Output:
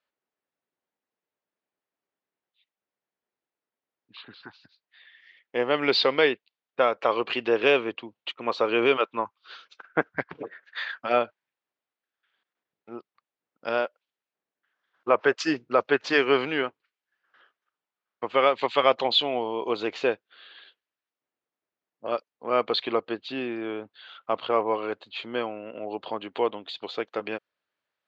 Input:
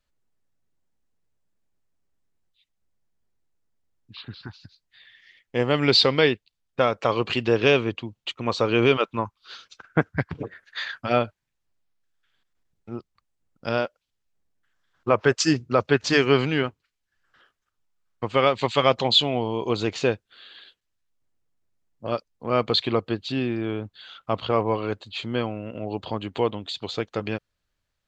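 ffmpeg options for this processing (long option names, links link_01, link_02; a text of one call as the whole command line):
ffmpeg -i in.wav -af "highpass=370,lowpass=3200" out.wav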